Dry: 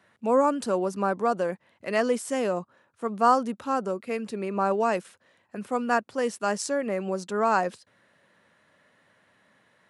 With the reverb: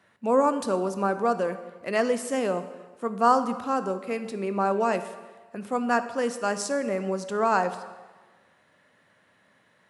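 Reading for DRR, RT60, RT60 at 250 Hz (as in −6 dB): 10.0 dB, 1.3 s, 1.2 s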